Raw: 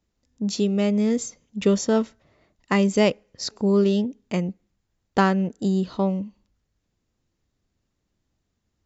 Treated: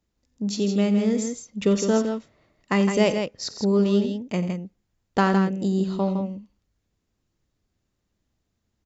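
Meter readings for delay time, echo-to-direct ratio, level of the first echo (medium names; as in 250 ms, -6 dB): 50 ms, -5.5 dB, -16.5 dB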